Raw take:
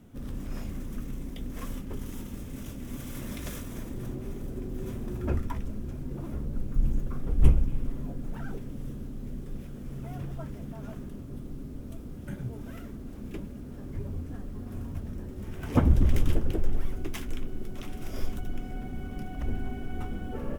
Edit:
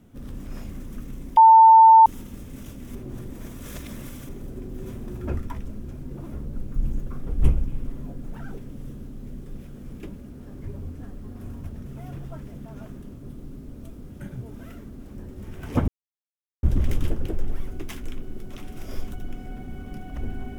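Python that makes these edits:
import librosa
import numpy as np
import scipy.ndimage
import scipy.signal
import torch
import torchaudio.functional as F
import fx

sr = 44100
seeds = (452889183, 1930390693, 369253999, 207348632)

y = fx.edit(x, sr, fx.bleep(start_s=1.37, length_s=0.69, hz=895.0, db=-7.5),
    fx.reverse_span(start_s=2.95, length_s=1.34),
    fx.move(start_s=13.24, length_s=1.93, to_s=9.93),
    fx.insert_silence(at_s=15.88, length_s=0.75), tone=tone)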